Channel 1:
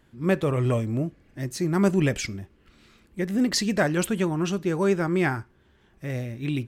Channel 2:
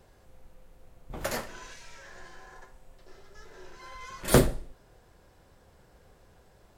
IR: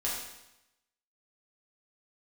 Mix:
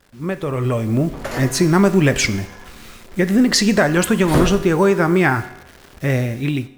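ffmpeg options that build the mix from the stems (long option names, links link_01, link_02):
-filter_complex "[0:a]equalizer=frequency=1200:width_type=o:width=1.9:gain=3.5,acompressor=threshold=-24dB:ratio=4,acrusher=bits=8:mix=0:aa=0.000001,volume=2dB,asplit=2[link_01][link_02];[link_02]volume=-16dB[link_03];[1:a]asoftclip=type=tanh:threshold=-16dB,highshelf=frequency=5300:gain=-10.5,volume=-7.5dB,asplit=2[link_04][link_05];[link_05]volume=-4dB[link_06];[2:a]atrim=start_sample=2205[link_07];[link_03][link_06]amix=inputs=2:normalize=0[link_08];[link_08][link_07]afir=irnorm=-1:irlink=0[link_09];[link_01][link_04][link_09]amix=inputs=3:normalize=0,dynaudnorm=framelen=260:gausssize=7:maxgain=11.5dB"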